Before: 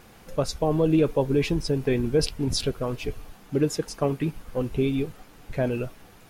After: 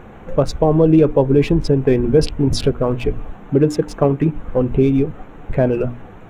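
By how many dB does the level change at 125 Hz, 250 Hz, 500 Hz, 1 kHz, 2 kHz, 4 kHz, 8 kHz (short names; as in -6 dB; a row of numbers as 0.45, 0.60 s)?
+10.0, +9.5, +9.5, +8.5, +4.0, +2.0, 0.0 dB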